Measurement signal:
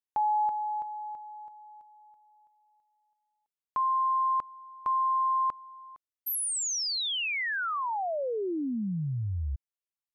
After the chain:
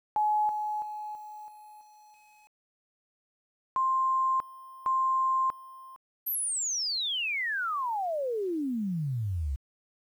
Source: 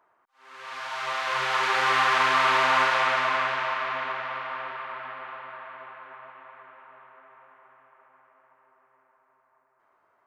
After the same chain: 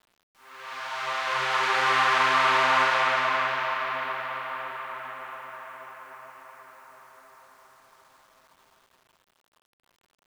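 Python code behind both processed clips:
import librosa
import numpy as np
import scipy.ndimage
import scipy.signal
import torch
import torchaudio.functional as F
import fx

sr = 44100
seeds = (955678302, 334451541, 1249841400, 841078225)

y = fx.quant_dither(x, sr, seeds[0], bits=10, dither='none')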